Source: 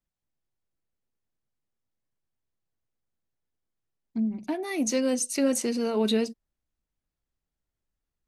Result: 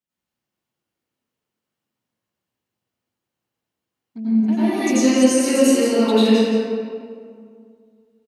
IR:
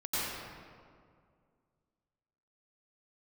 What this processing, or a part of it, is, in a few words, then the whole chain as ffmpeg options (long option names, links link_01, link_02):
PA in a hall: -filter_complex "[0:a]highpass=150,equalizer=frequency=2900:width_type=o:width=0.23:gain=6,aecho=1:1:173:0.355[link_01];[1:a]atrim=start_sample=2205[link_02];[link_01][link_02]afir=irnorm=-1:irlink=0,volume=2dB"